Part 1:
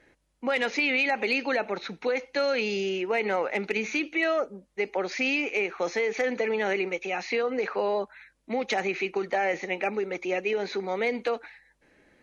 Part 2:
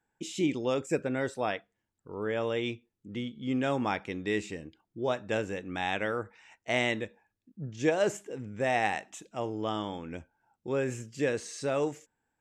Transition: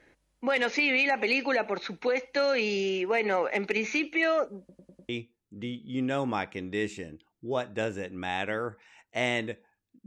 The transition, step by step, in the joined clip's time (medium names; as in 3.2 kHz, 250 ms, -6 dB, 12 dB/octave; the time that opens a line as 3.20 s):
part 1
4.59 s: stutter in place 0.10 s, 5 plays
5.09 s: go over to part 2 from 2.62 s